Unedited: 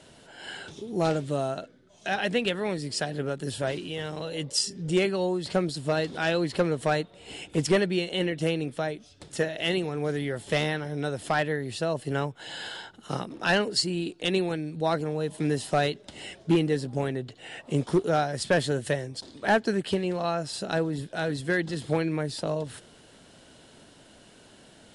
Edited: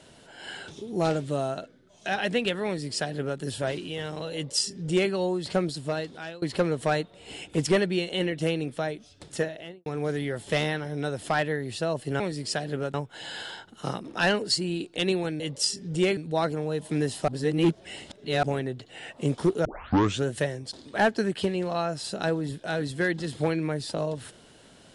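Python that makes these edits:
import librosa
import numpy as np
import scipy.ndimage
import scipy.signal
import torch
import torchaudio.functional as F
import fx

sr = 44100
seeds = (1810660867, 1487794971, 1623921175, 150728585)

y = fx.studio_fade_out(x, sr, start_s=9.33, length_s=0.53)
y = fx.edit(y, sr, fx.duplicate(start_s=2.66, length_s=0.74, to_s=12.2),
    fx.duplicate(start_s=4.34, length_s=0.77, to_s=14.66),
    fx.fade_out_to(start_s=5.67, length_s=0.75, floor_db=-23.5),
    fx.reverse_span(start_s=15.77, length_s=1.15),
    fx.tape_start(start_s=18.14, length_s=0.6), tone=tone)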